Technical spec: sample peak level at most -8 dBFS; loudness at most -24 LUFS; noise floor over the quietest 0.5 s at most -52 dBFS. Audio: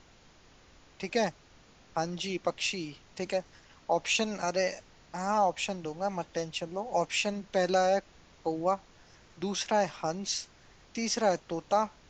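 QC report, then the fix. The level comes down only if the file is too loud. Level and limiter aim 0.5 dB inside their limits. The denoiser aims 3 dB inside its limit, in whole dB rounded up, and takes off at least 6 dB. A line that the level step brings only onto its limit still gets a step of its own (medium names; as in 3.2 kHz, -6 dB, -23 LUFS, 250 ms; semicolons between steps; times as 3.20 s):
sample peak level -14.0 dBFS: pass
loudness -31.5 LUFS: pass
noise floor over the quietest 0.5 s -58 dBFS: pass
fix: none needed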